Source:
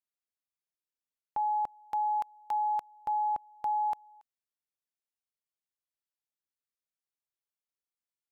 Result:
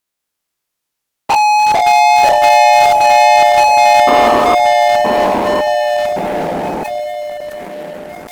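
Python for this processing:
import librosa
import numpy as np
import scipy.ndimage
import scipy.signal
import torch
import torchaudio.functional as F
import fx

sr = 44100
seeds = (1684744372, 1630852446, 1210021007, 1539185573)

p1 = fx.spec_dilate(x, sr, span_ms=120)
p2 = fx.over_compress(p1, sr, threshold_db=-35.0, ratio=-0.5)
p3 = p1 + F.gain(torch.from_numpy(p2), 3.0).numpy()
p4 = fx.vibrato(p3, sr, rate_hz=2.5, depth_cents=7.5)
p5 = fx.spec_paint(p4, sr, seeds[0], shape='noise', start_s=4.07, length_s=0.48, low_hz=220.0, high_hz=1300.0, level_db=-36.0)
p6 = fx.echo_wet_lowpass(p5, sr, ms=1017, feedback_pct=51, hz=970.0, wet_db=-17.0)
p7 = fx.leveller(p6, sr, passes=5)
p8 = fx.echo_pitch(p7, sr, ms=202, semitones=-3, count=2, db_per_echo=-3.0)
p9 = fx.sustainer(p8, sr, db_per_s=20.0)
y = F.gain(torch.from_numpy(p9), 7.5).numpy()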